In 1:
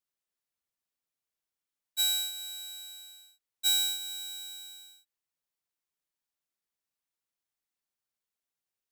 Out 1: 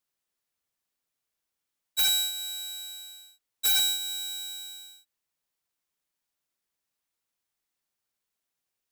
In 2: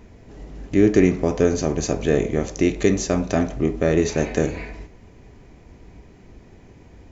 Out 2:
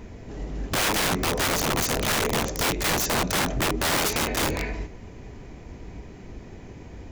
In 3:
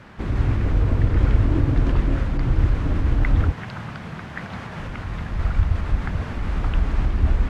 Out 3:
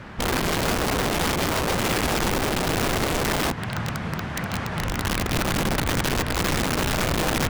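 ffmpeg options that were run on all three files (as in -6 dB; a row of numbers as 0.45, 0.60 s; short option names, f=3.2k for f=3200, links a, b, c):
-filter_complex "[0:a]asplit=2[a][b];[b]acompressor=threshold=-26dB:ratio=8,volume=-2dB[c];[a][c]amix=inputs=2:normalize=0,aeval=exprs='(mod(8.41*val(0)+1,2)-1)/8.41':c=same"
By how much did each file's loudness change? +3.5, -3.0, -0.5 LU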